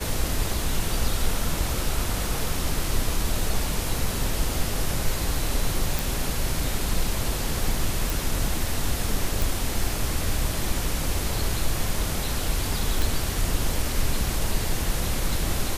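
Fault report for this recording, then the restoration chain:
0:05.99: click
0:08.10: click
0:09.42: click
0:13.02: click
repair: click removal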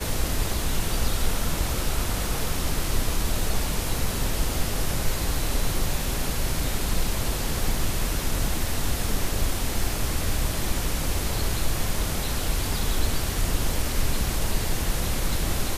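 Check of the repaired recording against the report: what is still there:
none of them is left

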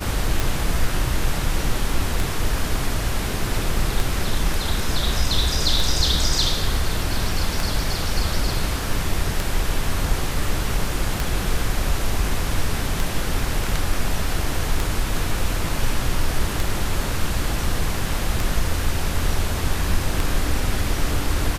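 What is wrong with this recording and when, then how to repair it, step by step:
scratch tick 33 1/3 rpm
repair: click removal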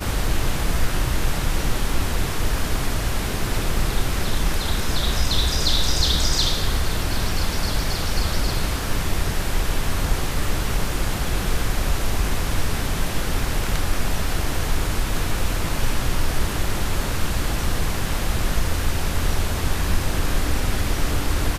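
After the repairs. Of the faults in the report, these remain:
none of them is left

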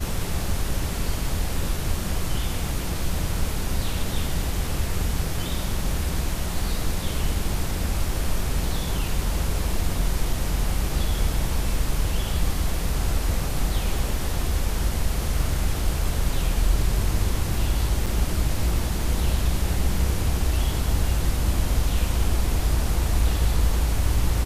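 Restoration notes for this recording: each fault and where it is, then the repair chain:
0:18.06–0:18.07: drop-out 5.6 ms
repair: repair the gap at 0:18.06, 5.6 ms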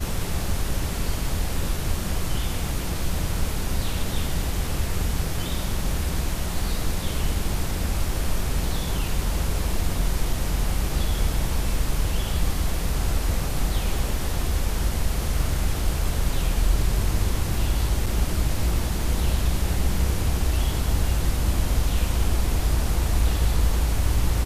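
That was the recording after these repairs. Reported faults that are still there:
none of them is left

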